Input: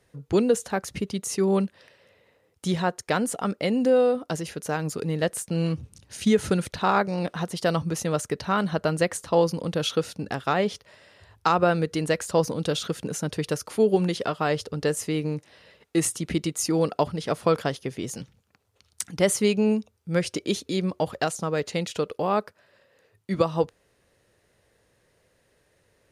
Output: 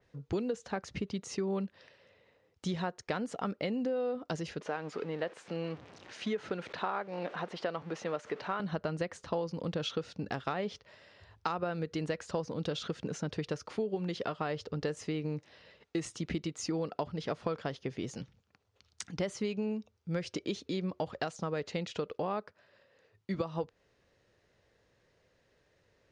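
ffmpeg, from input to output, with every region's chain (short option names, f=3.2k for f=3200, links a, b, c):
-filter_complex "[0:a]asettb=1/sr,asplit=3[a][b][c];[a]atrim=end=4.614[d];[b]atrim=start=4.61:end=8.6,asetpts=PTS-STARTPTS,afade=t=in:d=0.004:c=qsin,afade=t=out:st=3.986:d=0.004:c=qsin,aeval=exprs='val(0)+0.5*0.0158*sgn(val(0))':c=same,highpass=140,bass=f=250:g=-12,treble=f=4k:g=-11[e];[c]atrim=start=8.596[f];[d][e]acrossfade=d=0.004:c1=hsin:c2=qsin[g];[g][f]acrossfade=d=0.004:c1=qsin:c2=hsin,lowpass=f=6.4k:w=0.5412,lowpass=f=6.4k:w=1.3066,acompressor=threshold=-26dB:ratio=6,adynamicequalizer=threshold=0.00316:dfrequency=4000:dqfactor=0.7:tfrequency=4000:tqfactor=0.7:attack=5:release=100:ratio=0.375:range=2.5:mode=cutabove:tftype=highshelf,volume=-4.5dB"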